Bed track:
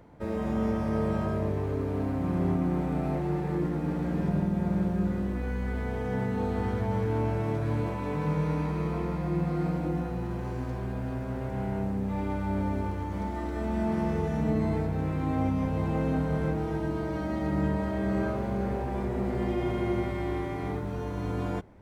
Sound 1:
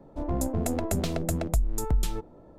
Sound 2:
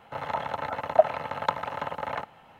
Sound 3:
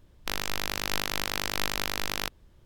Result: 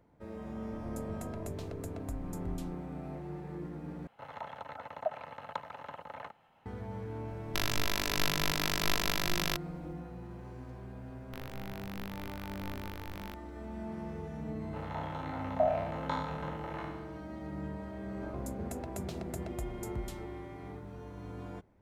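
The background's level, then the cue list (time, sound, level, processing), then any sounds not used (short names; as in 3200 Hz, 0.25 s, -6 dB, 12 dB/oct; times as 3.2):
bed track -12.5 dB
0.55 add 1 -16.5 dB
4.07 replace with 2 -12.5 dB + limiter -8 dBFS
7.28 add 3 -2.5 dB + comb 3 ms, depth 49%
11.06 add 3 -13.5 dB + bell 6200 Hz -12 dB 1.7 oct
14.61 add 2 -13.5 dB + spectral trails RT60 0.99 s
18.05 add 1 -13 dB + HPF 53 Hz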